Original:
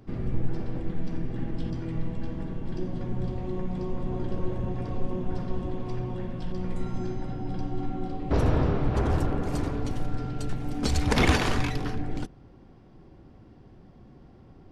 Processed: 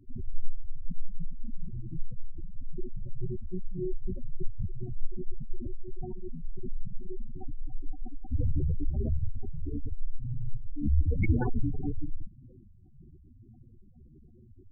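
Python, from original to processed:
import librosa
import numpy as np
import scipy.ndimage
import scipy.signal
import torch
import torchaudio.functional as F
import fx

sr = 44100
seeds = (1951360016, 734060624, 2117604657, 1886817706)

y = fx.chorus_voices(x, sr, voices=4, hz=0.95, base_ms=11, depth_ms=3.0, mix_pct=50)
y = fx.spec_gate(y, sr, threshold_db=-10, keep='strong')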